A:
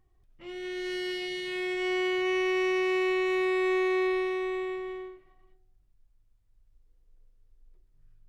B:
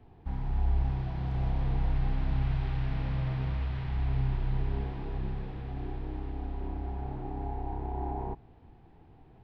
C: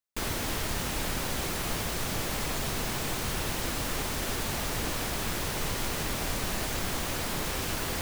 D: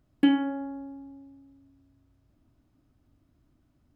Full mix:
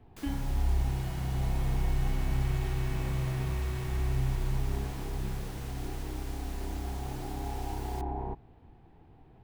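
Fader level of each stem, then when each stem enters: -19.5, -0.5, -16.0, -16.0 dB; 0.00, 0.00, 0.00, 0.00 s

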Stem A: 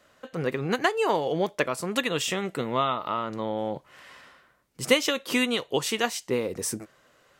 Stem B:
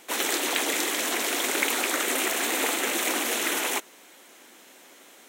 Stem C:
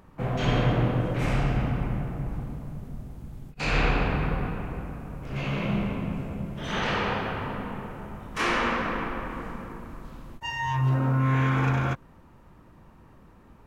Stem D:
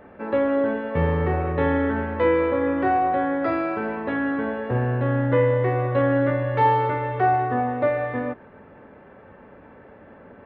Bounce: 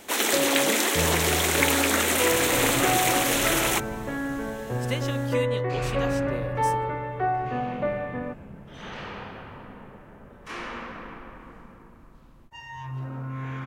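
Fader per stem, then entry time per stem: -10.5, +2.5, -10.5, -6.0 dB; 0.00, 0.00, 2.10, 0.00 s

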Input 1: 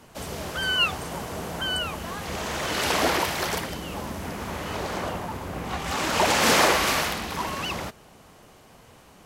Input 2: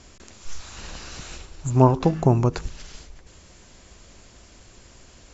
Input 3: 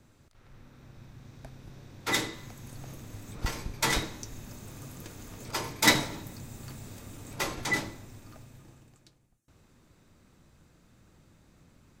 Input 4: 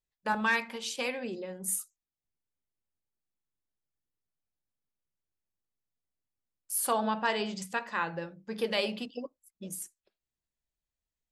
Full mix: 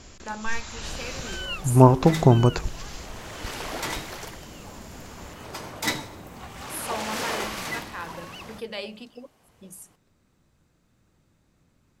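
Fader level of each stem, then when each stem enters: -11.0, +2.0, -5.5, -4.5 dB; 0.70, 0.00, 0.00, 0.00 s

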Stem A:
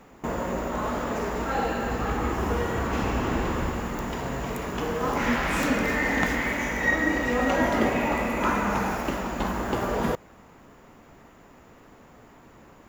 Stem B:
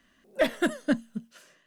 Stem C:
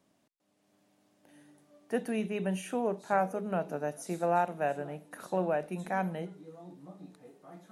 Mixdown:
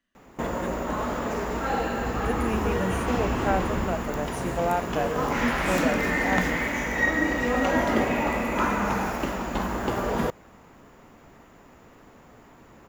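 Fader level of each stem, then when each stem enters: 0.0, -15.0, +2.0 dB; 0.15, 0.00, 0.35 s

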